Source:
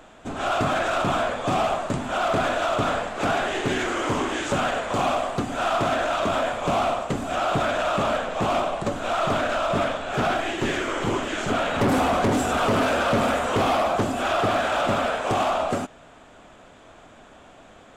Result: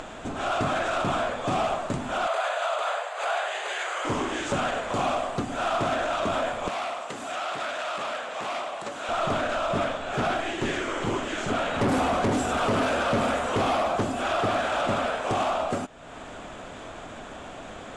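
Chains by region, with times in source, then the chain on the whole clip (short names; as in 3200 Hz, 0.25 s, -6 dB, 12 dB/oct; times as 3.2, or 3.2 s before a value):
2.27–4.05 steep high-pass 530 Hz + notch 5500 Hz, Q 5.8
6.68–9.09 HPF 900 Hz 6 dB/oct + core saturation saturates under 1600 Hz
whole clip: steep low-pass 11000 Hz 36 dB/oct; upward compressor, threshold -25 dBFS; gain -3 dB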